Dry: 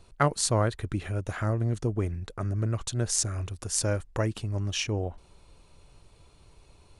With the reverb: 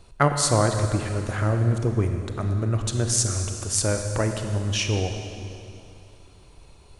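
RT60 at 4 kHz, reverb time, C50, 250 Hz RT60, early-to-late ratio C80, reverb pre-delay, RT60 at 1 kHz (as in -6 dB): 2.5 s, 2.7 s, 5.5 dB, 2.6 s, 6.5 dB, 28 ms, 2.8 s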